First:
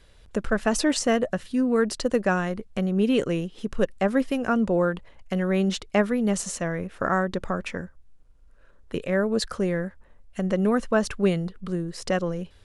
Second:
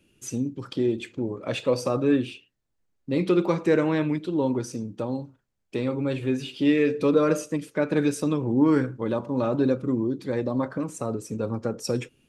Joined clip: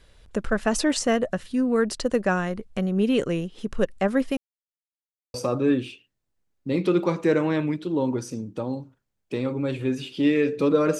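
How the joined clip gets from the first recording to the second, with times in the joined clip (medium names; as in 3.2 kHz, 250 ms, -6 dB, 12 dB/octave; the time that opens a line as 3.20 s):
first
4.37–5.34 s: mute
5.34 s: go over to second from 1.76 s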